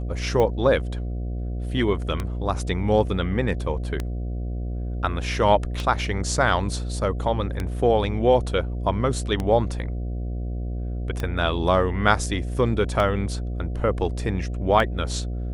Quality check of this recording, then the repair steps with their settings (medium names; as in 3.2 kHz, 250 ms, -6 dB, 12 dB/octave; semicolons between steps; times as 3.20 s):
buzz 60 Hz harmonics 12 -28 dBFS
tick 33 1/3 rpm -13 dBFS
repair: de-click; de-hum 60 Hz, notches 12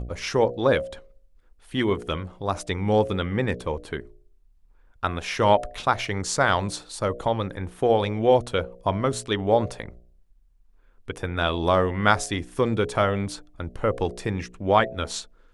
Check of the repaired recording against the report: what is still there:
nothing left